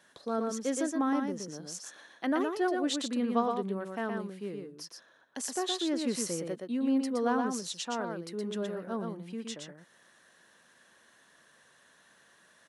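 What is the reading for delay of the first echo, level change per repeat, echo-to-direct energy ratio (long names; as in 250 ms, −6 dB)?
119 ms, repeats not evenly spaced, −4.5 dB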